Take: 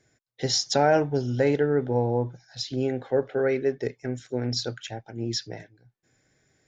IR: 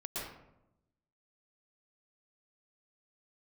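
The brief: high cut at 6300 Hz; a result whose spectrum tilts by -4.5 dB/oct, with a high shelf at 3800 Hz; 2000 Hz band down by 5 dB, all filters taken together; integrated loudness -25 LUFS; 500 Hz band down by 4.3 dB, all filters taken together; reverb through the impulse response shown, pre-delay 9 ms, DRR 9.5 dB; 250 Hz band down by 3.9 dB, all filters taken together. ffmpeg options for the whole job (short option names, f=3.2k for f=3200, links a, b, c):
-filter_complex "[0:a]lowpass=6.3k,equalizer=f=250:t=o:g=-3.5,equalizer=f=500:t=o:g=-4,equalizer=f=2k:t=o:g=-8,highshelf=f=3.8k:g=6,asplit=2[a][b];[1:a]atrim=start_sample=2205,adelay=9[c];[b][c]afir=irnorm=-1:irlink=0,volume=-11.5dB[d];[a][d]amix=inputs=2:normalize=0,volume=3.5dB"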